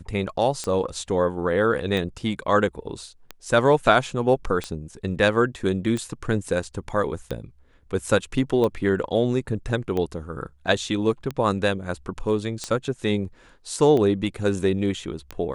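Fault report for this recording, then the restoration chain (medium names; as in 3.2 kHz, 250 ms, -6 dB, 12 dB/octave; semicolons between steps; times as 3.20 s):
tick 45 rpm -15 dBFS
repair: de-click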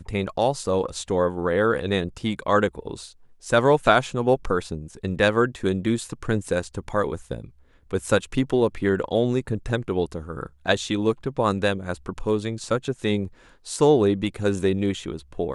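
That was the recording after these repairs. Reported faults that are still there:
nothing left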